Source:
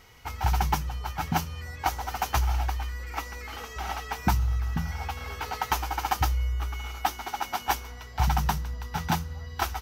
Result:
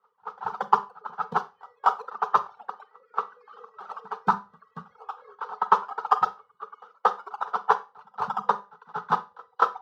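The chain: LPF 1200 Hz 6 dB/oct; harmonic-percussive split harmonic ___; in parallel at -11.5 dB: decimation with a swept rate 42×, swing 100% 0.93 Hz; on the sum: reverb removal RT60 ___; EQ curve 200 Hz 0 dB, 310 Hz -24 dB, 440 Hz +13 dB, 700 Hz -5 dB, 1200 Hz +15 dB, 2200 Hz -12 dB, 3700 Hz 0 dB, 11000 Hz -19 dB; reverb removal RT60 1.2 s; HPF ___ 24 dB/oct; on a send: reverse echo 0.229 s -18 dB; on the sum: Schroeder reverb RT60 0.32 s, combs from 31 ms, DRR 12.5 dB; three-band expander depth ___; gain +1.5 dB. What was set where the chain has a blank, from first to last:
-6 dB, 1 s, 230 Hz, 70%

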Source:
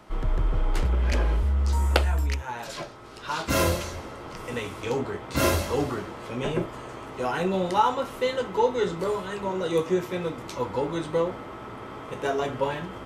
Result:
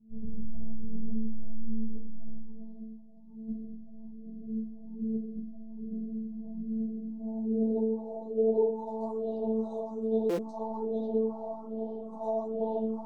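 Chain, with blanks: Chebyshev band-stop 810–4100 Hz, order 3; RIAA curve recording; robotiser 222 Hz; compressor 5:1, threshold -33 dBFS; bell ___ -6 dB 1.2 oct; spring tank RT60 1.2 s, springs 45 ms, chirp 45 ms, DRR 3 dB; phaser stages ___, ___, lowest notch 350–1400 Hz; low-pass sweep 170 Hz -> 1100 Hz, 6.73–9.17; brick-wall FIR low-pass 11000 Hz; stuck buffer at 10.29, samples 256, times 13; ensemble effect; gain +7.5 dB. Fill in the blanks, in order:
1400 Hz, 4, 1.2 Hz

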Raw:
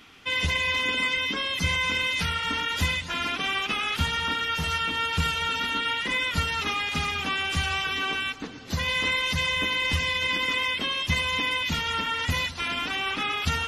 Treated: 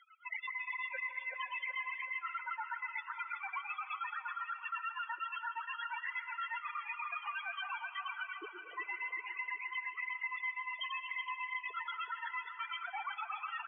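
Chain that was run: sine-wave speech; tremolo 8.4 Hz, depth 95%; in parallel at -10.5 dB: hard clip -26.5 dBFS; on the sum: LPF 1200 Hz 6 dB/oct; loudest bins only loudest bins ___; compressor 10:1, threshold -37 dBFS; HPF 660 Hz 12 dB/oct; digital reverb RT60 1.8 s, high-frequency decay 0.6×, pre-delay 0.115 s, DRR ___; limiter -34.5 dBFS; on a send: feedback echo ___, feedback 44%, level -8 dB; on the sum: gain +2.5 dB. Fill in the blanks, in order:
8, 13.5 dB, 0.375 s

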